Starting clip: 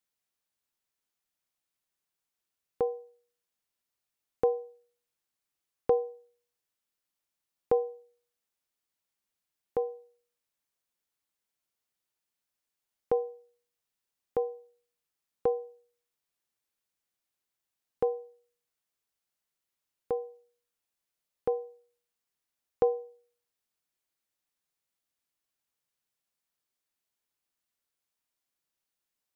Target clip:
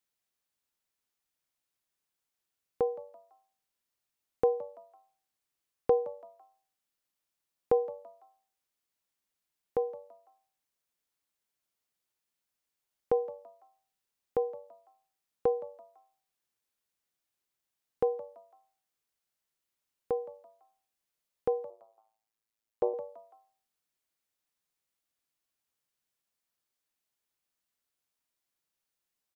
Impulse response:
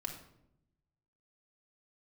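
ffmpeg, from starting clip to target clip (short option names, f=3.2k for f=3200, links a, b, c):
-filter_complex "[0:a]asplit=4[a][b][c][d];[b]adelay=167,afreqshift=98,volume=-19dB[e];[c]adelay=334,afreqshift=196,volume=-27.9dB[f];[d]adelay=501,afreqshift=294,volume=-36.7dB[g];[a][e][f][g]amix=inputs=4:normalize=0,asettb=1/sr,asplit=3[h][i][j];[h]atrim=end=21.704[k];[i]atrim=start=21.7:end=22.94,asetpts=PTS-STARTPTS,afade=t=in:d=0.004:c=qsin,afade=t=out:st=1.236:d=0.004:c=qsin,tremolo=f=110:d=0.919[l];[j]atrim=start=22.936[m];[k][l]acrossfade=d=0.004:c1=hsin:c2=qsin[n];[n][m]acrossfade=d=0.004:c1=qsin:c2=hsin"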